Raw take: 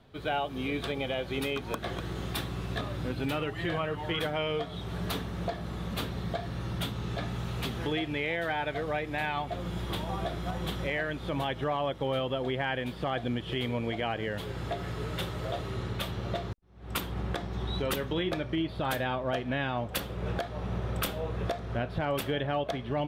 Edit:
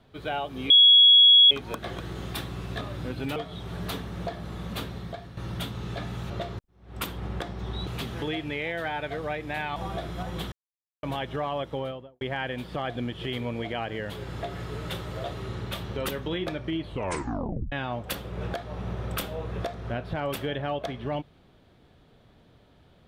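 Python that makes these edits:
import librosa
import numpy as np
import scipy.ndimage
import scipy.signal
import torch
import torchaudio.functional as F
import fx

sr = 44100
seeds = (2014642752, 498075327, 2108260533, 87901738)

y = fx.studio_fade_out(x, sr, start_s=11.96, length_s=0.53)
y = fx.edit(y, sr, fx.bleep(start_s=0.7, length_s=0.81, hz=3340.0, db=-11.5),
    fx.cut(start_s=3.36, length_s=1.21),
    fx.fade_out_to(start_s=6.01, length_s=0.57, floor_db=-9.5),
    fx.cut(start_s=9.4, length_s=0.64),
    fx.silence(start_s=10.8, length_s=0.51),
    fx.move(start_s=16.24, length_s=1.57, to_s=7.51),
    fx.tape_stop(start_s=18.65, length_s=0.92), tone=tone)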